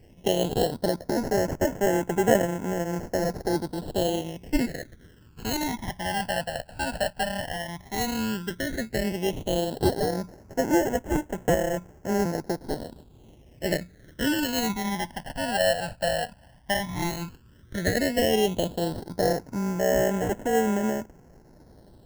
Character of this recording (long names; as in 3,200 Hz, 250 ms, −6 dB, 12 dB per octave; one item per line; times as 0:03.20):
aliases and images of a low sample rate 1,200 Hz, jitter 0%
phaser sweep stages 12, 0.11 Hz, lowest notch 360–4,200 Hz